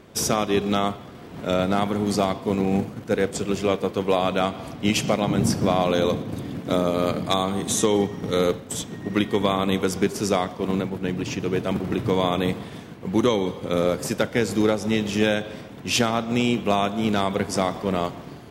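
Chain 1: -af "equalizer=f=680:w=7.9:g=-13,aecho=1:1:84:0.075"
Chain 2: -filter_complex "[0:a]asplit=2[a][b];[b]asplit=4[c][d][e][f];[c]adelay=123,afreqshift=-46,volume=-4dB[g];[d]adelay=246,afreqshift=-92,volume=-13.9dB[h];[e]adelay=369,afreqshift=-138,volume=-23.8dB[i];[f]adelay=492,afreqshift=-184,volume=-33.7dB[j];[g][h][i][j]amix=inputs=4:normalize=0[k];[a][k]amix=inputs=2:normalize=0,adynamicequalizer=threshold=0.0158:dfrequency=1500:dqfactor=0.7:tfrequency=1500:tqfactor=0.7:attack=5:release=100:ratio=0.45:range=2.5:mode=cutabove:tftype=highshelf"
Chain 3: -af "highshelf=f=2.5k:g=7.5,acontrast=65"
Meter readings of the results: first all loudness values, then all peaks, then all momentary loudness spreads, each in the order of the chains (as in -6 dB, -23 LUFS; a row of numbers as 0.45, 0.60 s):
-24.0, -22.5, -16.5 LUFS; -8.0, -6.0, -1.5 dBFS; 6, 6, 7 LU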